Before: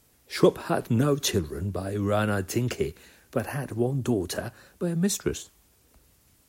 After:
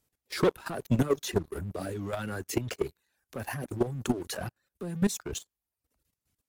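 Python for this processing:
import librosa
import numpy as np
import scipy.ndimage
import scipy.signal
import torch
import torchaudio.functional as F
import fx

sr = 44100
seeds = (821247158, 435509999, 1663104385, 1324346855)

y = fx.dereverb_blind(x, sr, rt60_s=0.76)
y = fx.leveller(y, sr, passes=3)
y = fx.level_steps(y, sr, step_db=14)
y = y * librosa.db_to_amplitude(-7.0)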